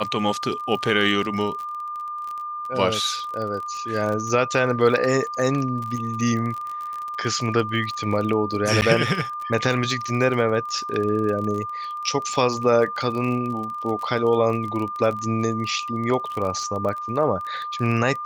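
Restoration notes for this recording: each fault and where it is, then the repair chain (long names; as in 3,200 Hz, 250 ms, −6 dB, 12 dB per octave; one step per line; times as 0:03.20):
surface crackle 26 per second −28 dBFS
whistle 1,200 Hz −28 dBFS
0:08.81–0:08.82: drop-out 9.7 ms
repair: click removal
notch filter 1,200 Hz, Q 30
repair the gap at 0:08.81, 9.7 ms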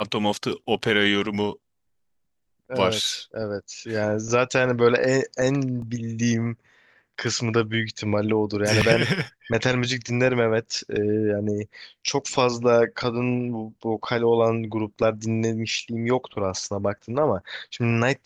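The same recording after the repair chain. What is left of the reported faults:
none of them is left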